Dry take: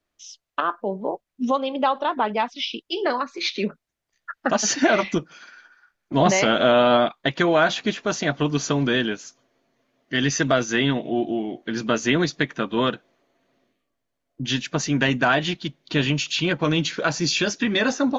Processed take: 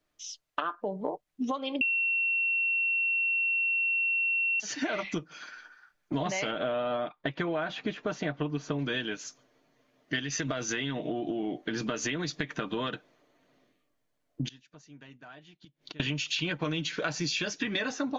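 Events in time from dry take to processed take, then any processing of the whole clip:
0:01.81–0:04.60: beep over 2,720 Hz −9.5 dBFS
0:06.51–0:08.79: low-pass filter 1,500 Hz 6 dB per octave
0:10.19–0:12.93: downward compressor 4 to 1, threshold −24 dBFS
0:14.48–0:16.00: gate with flip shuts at −24 dBFS, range −31 dB
whole clip: comb filter 6.6 ms, depth 33%; dynamic equaliser 2,500 Hz, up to +4 dB, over −36 dBFS, Q 0.95; downward compressor 10 to 1, threshold −28 dBFS

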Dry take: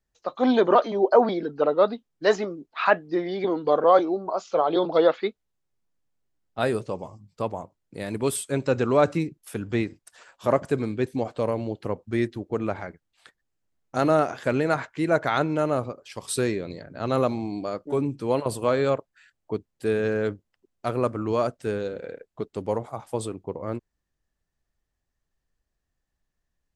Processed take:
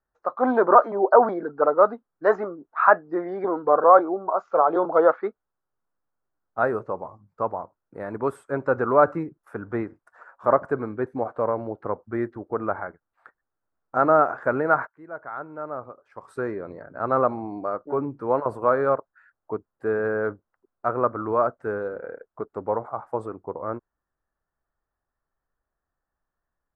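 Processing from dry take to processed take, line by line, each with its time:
0:14.87–0:16.77: fade in quadratic, from −18.5 dB
whole clip: drawn EQ curve 180 Hz 0 dB, 1,400 Hz +14 dB, 3,100 Hz −19 dB; level −6 dB

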